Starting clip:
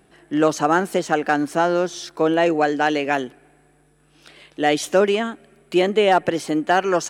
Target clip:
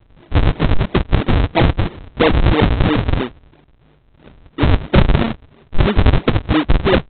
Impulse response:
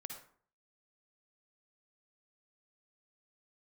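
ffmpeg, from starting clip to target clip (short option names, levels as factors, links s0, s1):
-af "acontrast=89,aresample=8000,acrusher=samples=26:mix=1:aa=0.000001:lfo=1:lforange=41.6:lforate=3,aresample=44100"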